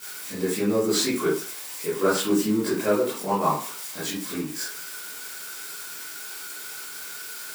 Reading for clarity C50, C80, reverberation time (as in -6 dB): 3.5 dB, 10.0 dB, 0.40 s